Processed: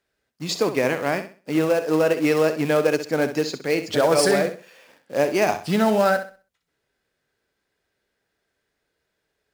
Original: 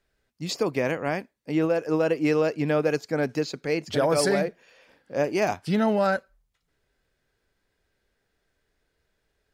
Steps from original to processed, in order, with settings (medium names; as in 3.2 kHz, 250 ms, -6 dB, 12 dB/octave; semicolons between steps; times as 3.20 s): in parallel at -4 dB: companded quantiser 4-bit; on the sum: high-pass 180 Hz 6 dB/octave; flutter echo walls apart 11 m, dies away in 0.36 s